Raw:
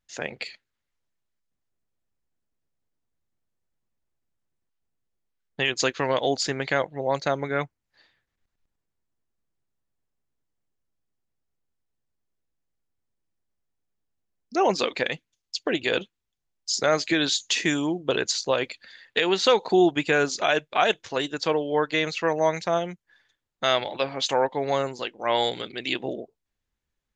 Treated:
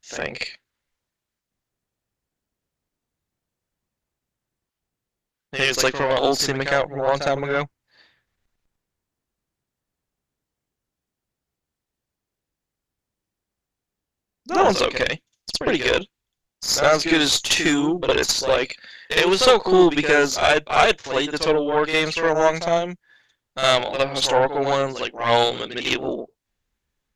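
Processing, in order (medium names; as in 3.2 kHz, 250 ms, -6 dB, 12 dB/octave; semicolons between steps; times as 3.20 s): Chebyshev shaper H 4 -15 dB, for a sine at -7 dBFS; reverse echo 59 ms -8 dB; trim +5 dB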